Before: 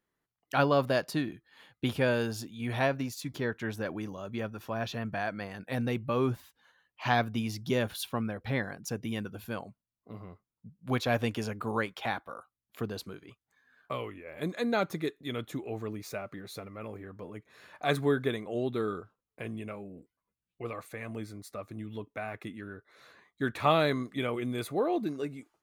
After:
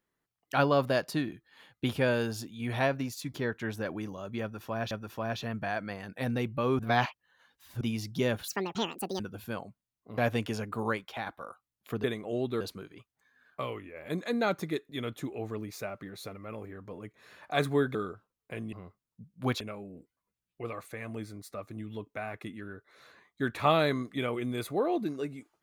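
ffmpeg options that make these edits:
-filter_complex "[0:a]asplit=13[s0][s1][s2][s3][s4][s5][s6][s7][s8][s9][s10][s11][s12];[s0]atrim=end=4.912[s13];[s1]atrim=start=4.418:end=6.302[s14];[s2]atrim=start=6.298:end=7.322,asetpts=PTS-STARTPTS,areverse[s15];[s3]atrim=start=7.318:end=7.994[s16];[s4]atrim=start=7.99:end=9.2,asetpts=PTS-STARTPTS,asetrate=74529,aresample=44100[s17];[s5]atrim=start=9.196:end=10.182[s18];[s6]atrim=start=11.058:end=12.15,asetpts=PTS-STARTPTS,afade=t=out:st=0.702:d=0.39:silence=0.501187[s19];[s7]atrim=start=12.15:end=12.922,asetpts=PTS-STARTPTS,afade=t=in:d=0.004:c=hsin:silence=0.501187[s20];[s8]atrim=start=18.258:end=18.832[s21];[s9]atrim=start=12.918:end=18.262[s22];[s10]atrim=start=18.828:end=19.612[s23];[s11]atrim=start=10.178:end=11.062[s24];[s12]atrim=start=19.608[s25];[s13][s14]acrossfade=d=0.004:c1=hsin:c2=hsin[s26];[s26][s15]acrossfade=d=0.004:c1=hsin:c2=hsin[s27];[s27][s16]acrossfade=d=0.004:c1=hsin:c2=hsin[s28];[s28][s17]acrossfade=d=0.004:c1=hsin:c2=hsin[s29];[s29][s18]acrossfade=d=0.004:c1=hsin:c2=hsin[s30];[s19][s20]concat=n=2:v=0:a=1[s31];[s30][s31]acrossfade=d=0.004:c1=hsin:c2=hsin[s32];[s32][s21]acrossfade=d=0.004:c1=hsin:c2=hsin[s33];[s33][s22]acrossfade=d=0.004:c1=hsin:c2=hsin[s34];[s34][s23]acrossfade=d=0.004:c1=hsin:c2=hsin[s35];[s35][s24]acrossfade=d=0.004:c1=hsin:c2=hsin[s36];[s36][s25]acrossfade=d=0.004:c1=hsin:c2=hsin"

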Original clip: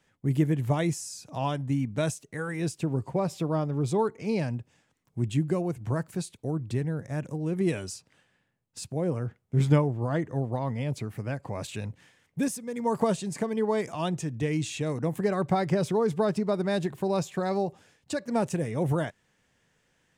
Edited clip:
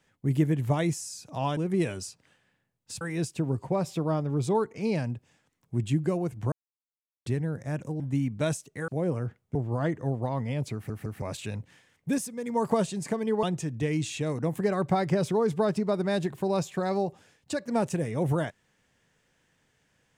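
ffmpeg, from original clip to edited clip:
-filter_complex "[0:a]asplit=12[s0][s1][s2][s3][s4][s5][s6][s7][s8][s9][s10][s11];[s0]atrim=end=1.572[s12];[s1]atrim=start=7.438:end=8.882[s13];[s2]atrim=start=2.448:end=5.96,asetpts=PTS-STARTPTS,afade=t=out:st=3.508:d=0.004:c=hsin[s14];[s3]atrim=start=5.96:end=6.7,asetpts=PTS-STARTPTS,volume=0[s15];[s4]atrim=start=6.7:end=7.442,asetpts=PTS-STARTPTS,afade=t=in:d=0.004:c=hsin[s16];[s5]atrim=start=1.568:end=2.452[s17];[s6]atrim=start=8.878:end=9.552[s18];[s7]atrim=start=9.848:end=11.202[s19];[s8]atrim=start=11.038:end=11.202[s20];[s9]atrim=start=11.038:end=11.202[s21];[s10]atrim=start=11.518:end=13.732[s22];[s11]atrim=start=14.028[s23];[s12][s13]acrossfade=d=0.004:c1=hsin:c2=hsin[s24];[s14][s15][s16]concat=n=3:v=0:a=1[s25];[s24][s25]acrossfade=d=0.004:c1=hsin:c2=hsin[s26];[s26][s17]acrossfade=d=0.004:c1=hsin:c2=hsin[s27];[s27][s18]acrossfade=d=0.004:c1=hsin:c2=hsin[s28];[s28][s19]acrossfade=d=0.004:c1=hsin:c2=hsin[s29];[s29][s20]acrossfade=d=0.004:c1=hsin:c2=hsin[s30];[s30][s21]acrossfade=d=0.004:c1=hsin:c2=hsin[s31];[s31][s22]acrossfade=d=0.004:c1=hsin:c2=hsin[s32];[s32][s23]acrossfade=d=0.004:c1=hsin:c2=hsin"

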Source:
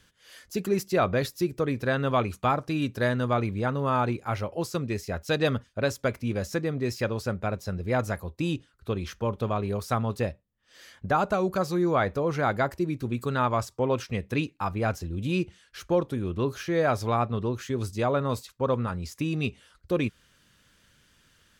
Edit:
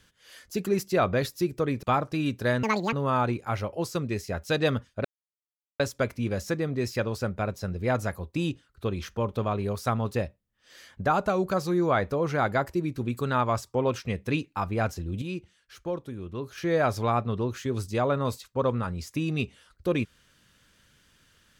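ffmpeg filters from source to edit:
-filter_complex "[0:a]asplit=7[s0][s1][s2][s3][s4][s5][s6];[s0]atrim=end=1.832[s7];[s1]atrim=start=2.388:end=3.194[s8];[s2]atrim=start=3.19:end=3.72,asetpts=PTS-STARTPTS,asetrate=78939,aresample=44100[s9];[s3]atrim=start=3.716:end=5.84,asetpts=PTS-STARTPTS,afade=t=out:st=2.12:d=0.004:c=hsin,apad=pad_dur=0.75[s10];[s4]atrim=start=5.84:end=15.262,asetpts=PTS-STARTPTS,afade=t=in:d=0.004:c=hsin[s11];[s5]atrim=start=15.258:end=16.622,asetpts=PTS-STARTPTS,volume=0.422[s12];[s6]atrim=start=16.618[s13];[s7][s8]acrossfade=d=0.004:c1=hsin:c2=hsin[s14];[s14][s9]acrossfade=d=0.004:c1=hsin:c2=hsin[s15];[s10][s11]concat=n=2:v=0:a=1[s16];[s15][s16]acrossfade=d=0.004:c1=hsin:c2=hsin[s17];[s17][s12]acrossfade=d=0.004:c1=hsin:c2=hsin[s18];[s18][s13]acrossfade=d=0.004:c1=hsin:c2=hsin"

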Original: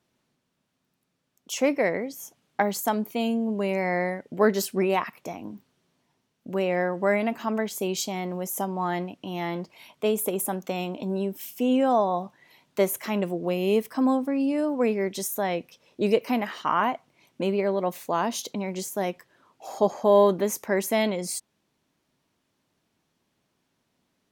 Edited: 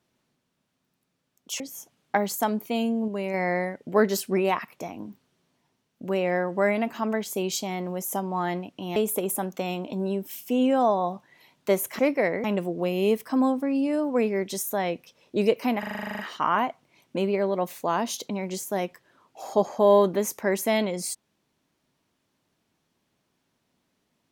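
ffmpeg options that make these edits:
-filter_complex "[0:a]asplit=17[s0][s1][s2][s3][s4][s5][s6][s7][s8][s9][s10][s11][s12][s13][s14][s15][s16];[s0]atrim=end=1.602[s17];[s1]atrim=start=2.048:end=3.532[s18];[s2]atrim=start=3.528:end=3.792,asetpts=PTS-STARTPTS,volume=0.668[s19];[s3]atrim=start=3.788:end=9.412[s20];[s4]atrim=start=10.058:end=13.092[s21];[s5]atrim=start=1.598:end=2.052[s22];[s6]atrim=start=13.088:end=16.482[s23];[s7]atrim=start=16.438:end=16.482[s24];[s8]atrim=start=16.438:end=16.482[s25];[s9]atrim=start=16.438:end=16.482[s26];[s10]atrim=start=16.438:end=16.482[s27];[s11]atrim=start=16.438:end=16.482[s28];[s12]atrim=start=16.438:end=16.482[s29];[s13]atrim=start=16.438:end=16.482[s30];[s14]atrim=start=16.438:end=16.482[s31];[s15]atrim=start=16.438:end=16.482[s32];[s16]atrim=start=16.438[s33];[s17][s18]acrossfade=d=0.004:c1=hsin:c2=hsin[s34];[s34][s19]acrossfade=d=0.004:c1=hsin:c2=hsin[s35];[s35][s20]acrossfade=d=0.004:c1=hsin:c2=hsin[s36];[s36][s21]acrossfade=d=0.004:c1=hsin:c2=hsin[s37];[s37][s22]acrossfade=d=0.004:c1=hsin:c2=hsin[s38];[s38][s23]acrossfade=d=0.004:c1=hsin:c2=hsin[s39];[s39][s24]acrossfade=d=0.004:c1=hsin:c2=hsin[s40];[s40][s25]acrossfade=d=0.004:c1=hsin:c2=hsin[s41];[s41][s26]acrossfade=d=0.004:c1=hsin:c2=hsin[s42];[s42][s27]acrossfade=d=0.004:c1=hsin:c2=hsin[s43];[s43][s28]acrossfade=d=0.004:c1=hsin:c2=hsin[s44];[s44][s29]acrossfade=d=0.004:c1=hsin:c2=hsin[s45];[s45][s30]acrossfade=d=0.004:c1=hsin:c2=hsin[s46];[s46][s31]acrossfade=d=0.004:c1=hsin:c2=hsin[s47];[s47][s32]acrossfade=d=0.004:c1=hsin:c2=hsin[s48];[s48][s33]acrossfade=d=0.004:c1=hsin:c2=hsin"

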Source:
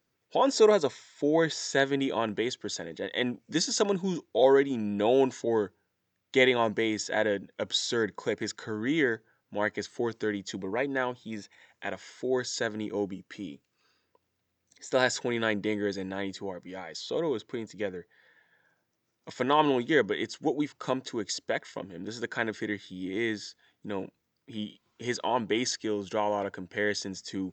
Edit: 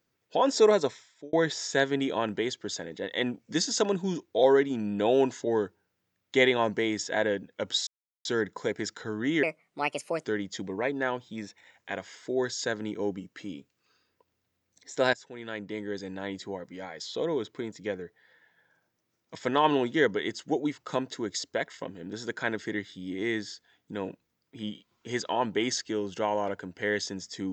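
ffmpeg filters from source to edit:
-filter_complex "[0:a]asplit=6[s0][s1][s2][s3][s4][s5];[s0]atrim=end=1.33,asetpts=PTS-STARTPTS,afade=t=out:st=0.85:d=0.48[s6];[s1]atrim=start=1.33:end=7.87,asetpts=PTS-STARTPTS,afade=t=in:d=0.004:c=hsin,afade=t=out:st=6.536:d=0.004:c=hsin,apad=pad_dur=0.38[s7];[s2]atrim=start=7.87:end=9.054,asetpts=PTS-STARTPTS,afade=t=in:d=0.004:c=hsin[s8];[s3]atrim=start=9.05:end=10.19,asetpts=PTS-STARTPTS,asetrate=61740,aresample=44100[s9];[s4]atrim=start=10.186:end=15.08,asetpts=PTS-STARTPTS,afade=t=out:st=4.89:d=0.004:c=hsin:silence=0.0944061[s10];[s5]atrim=start=15.08,asetpts=PTS-STARTPTS,afade=t=in:d=1.41:silence=0.0944061[s11];[s6][s7][s8]concat=n=3:v=0:a=1[s12];[s12][s9]acrossfade=d=0.004:c1=hsin:c2=hsin[s13];[s10][s11]concat=n=2:v=0:a=1[s14];[s13][s14]acrossfade=d=0.004:c1=hsin:c2=hsin"

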